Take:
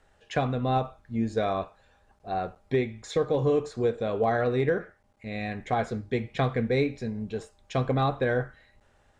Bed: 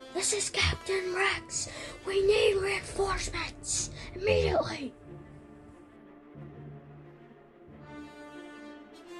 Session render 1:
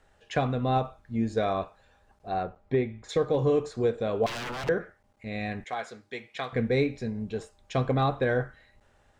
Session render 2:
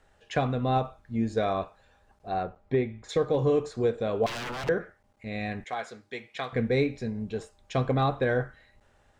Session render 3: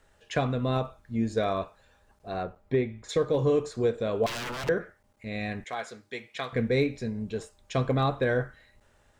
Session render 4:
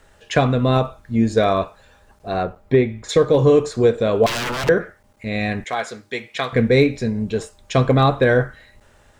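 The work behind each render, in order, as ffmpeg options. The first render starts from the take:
-filter_complex "[0:a]asettb=1/sr,asplit=3[s0][s1][s2];[s0]atrim=end=2.434[s3];[s1]atrim=start=2.43:end=3.09,asetpts=PTS-STARTPTS,afade=t=in:d=0.004:c=qsin,afade=t=out:st=0.656:d=0.004:c=qsin,lowpass=f=1800:p=1[s4];[s2]atrim=start=3.086[s5];[s3][s4]acrossfade=d=0.004:c1=hsin:c2=qsin[s6];[s6][s5]acrossfade=d=0.004:c1=qsin:c2=hsin,asettb=1/sr,asplit=3[s7][s8][s9];[s7]atrim=end=4.264[s10];[s8]atrim=start=4.26:end=4.69,asetpts=PTS-STARTPTS,afade=t=in:d=0.004:c=qsin,afade=t=out:st=0.426:d=0.004:c=qsin,aeval=exprs='0.0316*(abs(mod(val(0)/0.0316+3,4)-2)-1)':c=same[s11];[s9]atrim=start=4.686[s12];[s10][s11]acrossfade=d=0.004:c1=hsin:c2=qsin[s13];[s13][s12]acrossfade=d=0.004:c1=qsin:c2=hsin,asettb=1/sr,asplit=3[s14][s15][s16];[s14]atrim=end=5.644[s17];[s15]atrim=start=5.64:end=6.53,asetpts=PTS-STARTPTS,afade=t=in:d=0.004:c=qsin,afade=t=out:st=0.886:d=0.004:c=qsin,highpass=f=1400:p=1[s18];[s16]atrim=start=6.526[s19];[s17][s18]acrossfade=d=0.004:c1=hsin:c2=qsin[s20];[s20][s19]acrossfade=d=0.004:c1=qsin:c2=hsin"
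-af anull
-af "highshelf=f=7200:g=7.5,bandreject=f=770:w=12"
-af "volume=3.35"

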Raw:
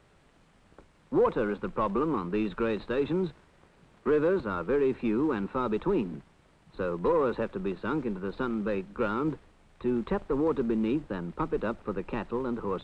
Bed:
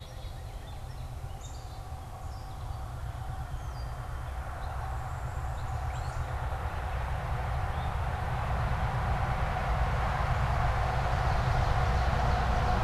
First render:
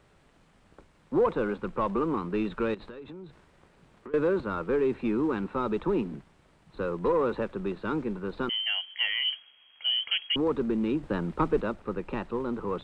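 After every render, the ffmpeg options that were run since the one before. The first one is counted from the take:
-filter_complex "[0:a]asettb=1/sr,asplit=3[s0][s1][s2];[s0]atrim=end=2.744[s3];[s1]atrim=start=2.74:end=4.14,asetpts=PTS-STARTPTS,afade=t=in:d=0.004:c=qsin,afade=t=out:st=1.396:d=0.004:c=qsin,acompressor=threshold=0.0112:ratio=20:attack=3.2:release=140:knee=1:detection=peak[s4];[s2]atrim=start=4.136[s5];[s3][s4]acrossfade=d=0.004:c1=hsin:c2=qsin[s6];[s6][s5]acrossfade=d=0.004:c1=qsin:c2=hsin,asettb=1/sr,asplit=3[s7][s8][s9];[s7]atrim=end=8.494[s10];[s8]atrim=start=8.49:end=10.36,asetpts=PTS-STARTPTS,afade=t=in:d=0.004:c=qsin,afade=t=out:st=1.866:d=0.004:c=qsin,lowpass=f=2800:t=q:w=0.5098,lowpass=f=2800:t=q:w=0.6013,lowpass=f=2800:t=q:w=0.9,lowpass=f=2800:t=q:w=2.563,afreqshift=-3300[s11];[s9]atrim=start=10.356[s12];[s10][s11]acrossfade=d=0.004:c1=hsin:c2=qsin[s13];[s13][s12]acrossfade=d=0.004:c1=qsin:c2=hsin,asplit=3[s14][s15][s16];[s14]atrim=end=11.032[s17];[s15]atrim=start=11.028:end=11.612,asetpts=PTS-STARTPTS,volume=1.68[s18];[s16]atrim=start=11.608[s19];[s17][s18]acrossfade=d=0.004:c1=hsin:c2=hsin[s20];[s20][s19]acrossfade=d=0.004:c1=hsin:c2=hsin"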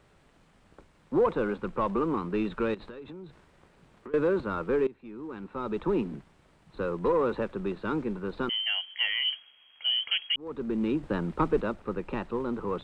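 -filter_complex "[0:a]asplit=3[s0][s1][s2];[s0]atrim=end=4.87,asetpts=PTS-STARTPTS,afade=t=out:st=4.866:d=0.004:c=hsin:silence=0.11885[s3];[s1]atrim=start=4.87:end=10.36,asetpts=PTS-STARTPTS,afade=t=in:d=1.03:c=qua:silence=0.11885,afade=t=out:st=5.486:d=0.004:c=hsin[s4];[s2]atrim=start=10.36,asetpts=PTS-STARTPTS,afade=t=in:d=0.47[s5];[s3][s4][s5]concat=n=3:v=0:a=1"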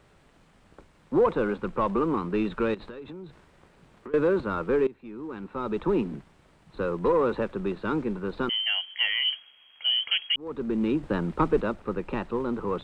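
-af "volume=1.33"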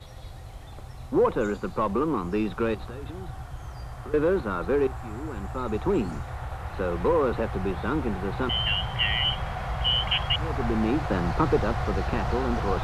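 -filter_complex "[1:a]volume=0.891[s0];[0:a][s0]amix=inputs=2:normalize=0"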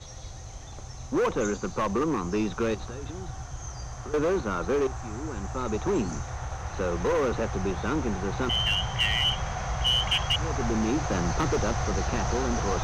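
-filter_complex "[0:a]acrossover=split=3700[s0][s1];[s0]asoftclip=type=hard:threshold=0.0841[s2];[s1]lowpass=f=6200:t=q:w=15[s3];[s2][s3]amix=inputs=2:normalize=0"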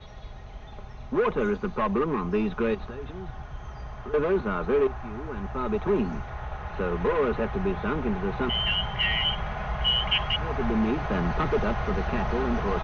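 -af "lowpass=f=3300:w=0.5412,lowpass=f=3300:w=1.3066,aecho=1:1:4.8:0.52"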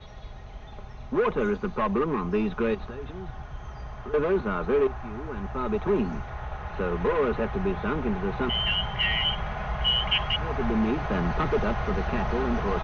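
-af anull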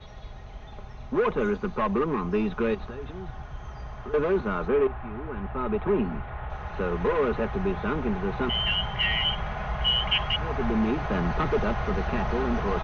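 -filter_complex "[0:a]asettb=1/sr,asplit=3[s0][s1][s2];[s0]atrim=end=4.684[s3];[s1]atrim=start=4.68:end=6.5,asetpts=PTS-STARTPTS,afade=t=in:d=0.004:c=qsin,afade=t=out:st=1.816:d=0.004:c=qsin,lowpass=f=3300:w=0.5412,lowpass=f=3300:w=1.3066[s4];[s2]atrim=start=6.496[s5];[s3][s4]acrossfade=d=0.004:c1=hsin:c2=qsin[s6];[s6][s5]acrossfade=d=0.004:c1=qsin:c2=hsin"

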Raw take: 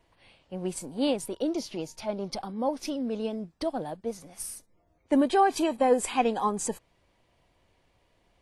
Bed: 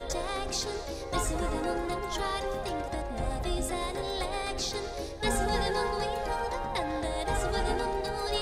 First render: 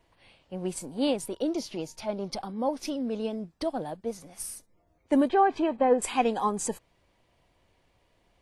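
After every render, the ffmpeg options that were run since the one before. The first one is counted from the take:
-filter_complex "[0:a]asettb=1/sr,asplit=3[s0][s1][s2];[s0]atrim=end=5.294[s3];[s1]atrim=start=5.29:end=6.02,asetpts=PTS-STARTPTS,afade=t=in:d=0.004:c=qsin,afade=t=out:st=0.726:d=0.004:c=qsin,lowpass=2300[s4];[s2]atrim=start=6.016[s5];[s3][s4]acrossfade=d=0.004:c1=hsin:c2=qsin[s6];[s6][s5]acrossfade=d=0.004:c1=qsin:c2=hsin"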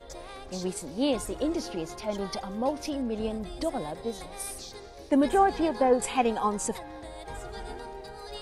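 -filter_complex "[1:a]volume=0.316[s0];[0:a][s0]amix=inputs=2:normalize=0"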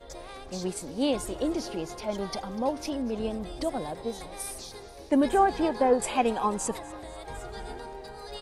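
-filter_complex "[0:a]asplit=5[s0][s1][s2][s3][s4];[s1]adelay=244,afreqshift=95,volume=0.106[s5];[s2]adelay=488,afreqshift=190,volume=0.0562[s6];[s3]adelay=732,afreqshift=285,volume=0.0299[s7];[s4]adelay=976,afreqshift=380,volume=0.0158[s8];[s0][s5][s6][s7][s8]amix=inputs=5:normalize=0"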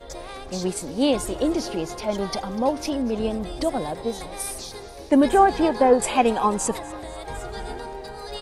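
-af "volume=2"

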